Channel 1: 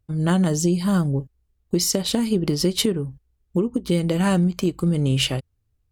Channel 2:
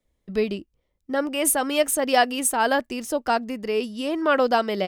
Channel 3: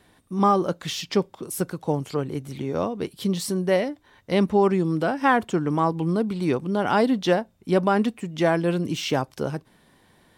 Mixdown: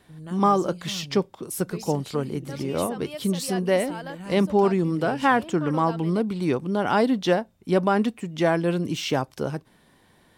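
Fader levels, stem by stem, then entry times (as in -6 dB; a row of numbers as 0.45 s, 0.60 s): -18.5 dB, -16.0 dB, -0.5 dB; 0.00 s, 1.35 s, 0.00 s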